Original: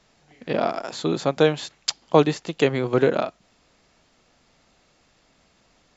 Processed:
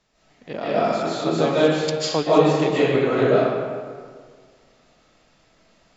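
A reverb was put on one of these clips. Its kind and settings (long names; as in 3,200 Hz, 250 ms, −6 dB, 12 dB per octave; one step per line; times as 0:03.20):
comb and all-pass reverb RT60 1.8 s, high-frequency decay 0.6×, pre-delay 110 ms, DRR −10 dB
level −7.5 dB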